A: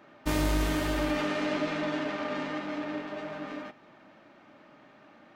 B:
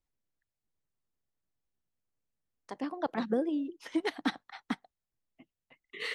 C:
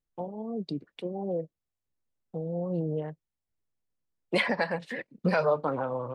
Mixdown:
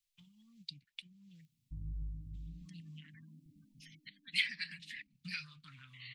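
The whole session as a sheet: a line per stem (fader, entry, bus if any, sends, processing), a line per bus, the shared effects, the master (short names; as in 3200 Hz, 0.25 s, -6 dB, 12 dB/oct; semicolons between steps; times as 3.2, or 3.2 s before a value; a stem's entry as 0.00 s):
-1.5 dB, 1.45 s, no send, median filter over 41 samples; spectral gate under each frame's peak -15 dB strong
-3.0 dB, 0.00 s, no send, spectral gate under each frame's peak -20 dB strong; notch 1300 Hz, Q 5; auto duck -8 dB, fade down 0.75 s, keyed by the third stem
-2.5 dB, 0.00 s, no send, ten-band EQ 125 Hz -7 dB, 500 Hz +4 dB, 4000 Hz +4 dB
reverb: off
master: elliptic band-stop 140–2300 Hz, stop band 60 dB; low shelf 200 Hz -10 dB; mismatched tape noise reduction encoder only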